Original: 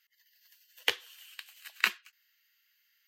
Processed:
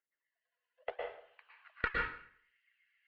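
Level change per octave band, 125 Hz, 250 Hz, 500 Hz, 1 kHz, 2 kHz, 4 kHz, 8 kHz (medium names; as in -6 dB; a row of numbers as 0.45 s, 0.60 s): no reading, +3.0 dB, +3.5 dB, +2.0 dB, -5.5 dB, -20.0 dB, under -35 dB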